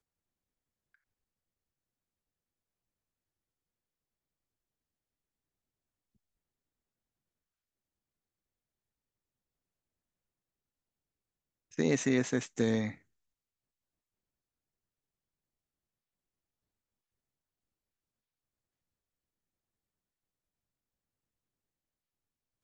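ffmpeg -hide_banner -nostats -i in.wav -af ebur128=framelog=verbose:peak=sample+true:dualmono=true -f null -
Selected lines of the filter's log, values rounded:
Integrated loudness:
  I:         -28.2 LUFS
  Threshold: -38.7 LUFS
Loudness range:
  LRA:         8.0 LU
  Threshold: -52.9 LUFS
  LRA low:   -39.4 LUFS
  LRA high:  -31.4 LUFS
Sample peak:
  Peak:      -16.1 dBFS
True peak:
  Peak:      -16.0 dBFS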